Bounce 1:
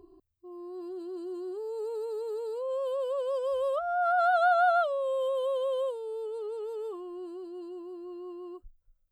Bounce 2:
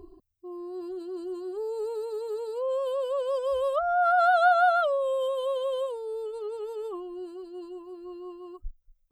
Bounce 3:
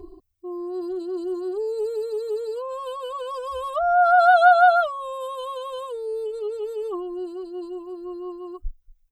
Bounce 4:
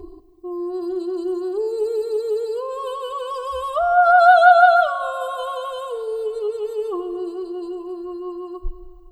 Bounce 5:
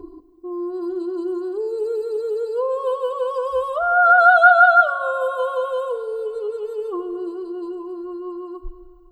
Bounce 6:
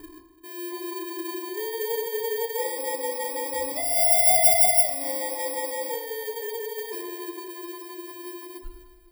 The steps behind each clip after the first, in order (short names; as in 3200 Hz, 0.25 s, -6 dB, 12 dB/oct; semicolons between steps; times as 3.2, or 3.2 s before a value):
reverb removal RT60 1.6 s; low shelf 88 Hz +9.5 dB; gain +5.5 dB
comb 2.7 ms, depth 93%; gain +1.5 dB
plate-style reverb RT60 2.7 s, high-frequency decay 0.85×, DRR 10 dB; gain +3.5 dB
small resonant body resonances 290/510/990/1400 Hz, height 14 dB, ringing for 40 ms; gain -6.5 dB
FFT order left unsorted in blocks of 32 samples; FDN reverb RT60 0.77 s, low-frequency decay 1.45×, high-frequency decay 0.4×, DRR 2 dB; gain -8 dB